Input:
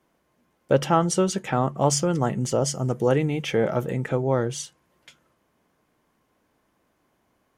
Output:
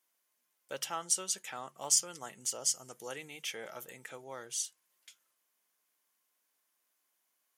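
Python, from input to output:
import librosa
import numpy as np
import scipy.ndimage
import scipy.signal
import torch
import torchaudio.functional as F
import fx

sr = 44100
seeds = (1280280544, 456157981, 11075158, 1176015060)

y = np.diff(x, prepend=0.0)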